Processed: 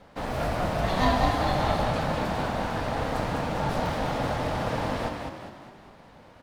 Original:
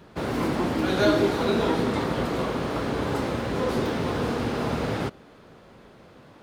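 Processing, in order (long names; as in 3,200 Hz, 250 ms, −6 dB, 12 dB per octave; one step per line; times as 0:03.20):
ring modulation 370 Hz
echo with shifted repeats 202 ms, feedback 48%, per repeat +33 Hz, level −5 dB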